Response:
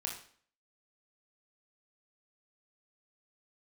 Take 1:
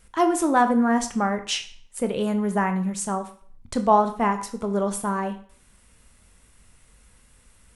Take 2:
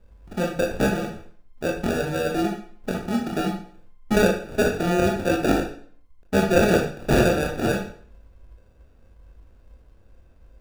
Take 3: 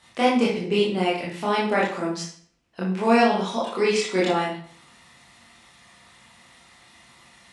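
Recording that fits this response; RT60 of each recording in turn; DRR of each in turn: 2; 0.50 s, 0.50 s, 0.50 s; 7.5 dB, -0.5 dB, -7.0 dB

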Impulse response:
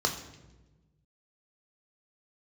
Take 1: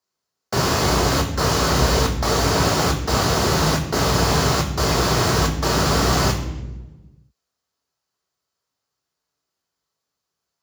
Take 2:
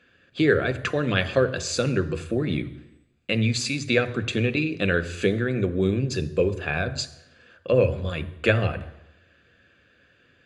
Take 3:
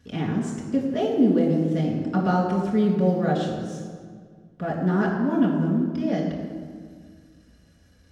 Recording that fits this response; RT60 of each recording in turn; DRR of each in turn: 1; 1.2 s, 0.85 s, 1.9 s; 3.0 dB, 11.0 dB, -5.0 dB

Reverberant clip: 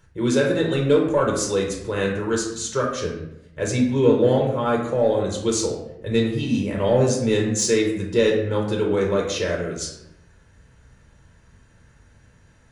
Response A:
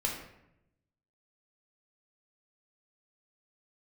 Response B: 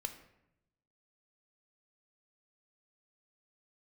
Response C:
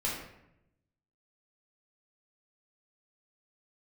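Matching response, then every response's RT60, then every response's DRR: A; 0.85 s, 0.85 s, 0.80 s; -1.5 dB, 6.5 dB, -6.0 dB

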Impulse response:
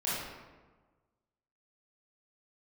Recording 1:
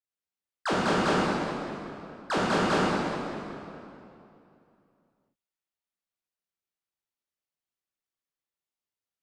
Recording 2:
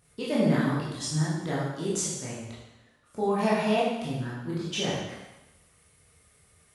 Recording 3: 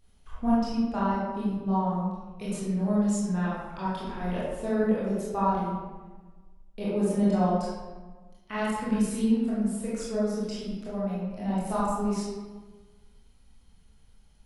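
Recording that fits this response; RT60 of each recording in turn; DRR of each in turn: 3; 2.7 s, 0.95 s, 1.3 s; -7.5 dB, -8.0 dB, -9.5 dB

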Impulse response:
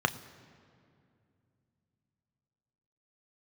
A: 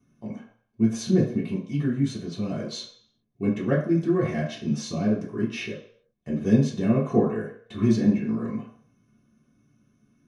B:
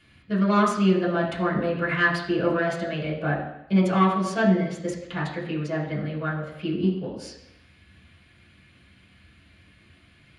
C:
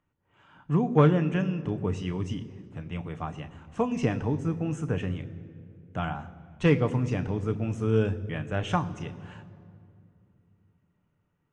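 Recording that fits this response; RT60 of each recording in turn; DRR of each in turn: C; 0.55 s, 0.85 s, 2.5 s; -8.0 dB, -6.5 dB, 9.0 dB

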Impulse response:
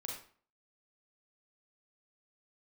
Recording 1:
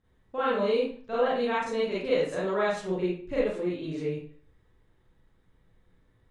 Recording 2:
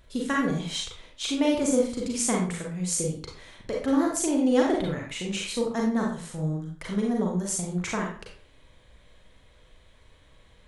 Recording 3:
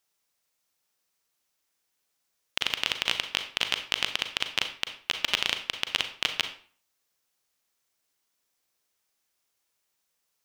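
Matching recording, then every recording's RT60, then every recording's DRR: 2; 0.45 s, 0.45 s, 0.45 s; -9.0 dB, -1.5 dB, 7.0 dB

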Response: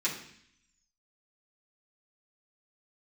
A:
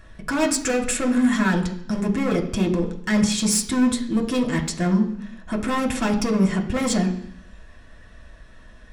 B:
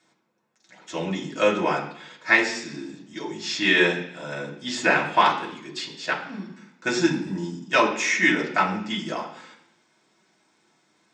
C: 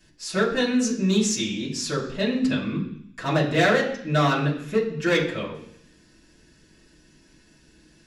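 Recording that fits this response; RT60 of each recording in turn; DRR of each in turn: C; 0.65 s, 0.65 s, 0.65 s; 1.0 dB, -4.0 dB, -8.0 dB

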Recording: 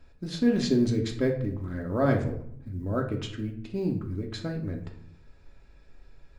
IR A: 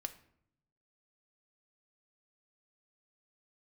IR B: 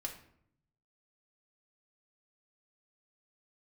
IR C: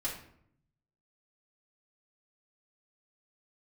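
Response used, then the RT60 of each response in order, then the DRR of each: B; 0.70 s, 0.65 s, 0.65 s; 8.0 dB, 1.0 dB, -6.5 dB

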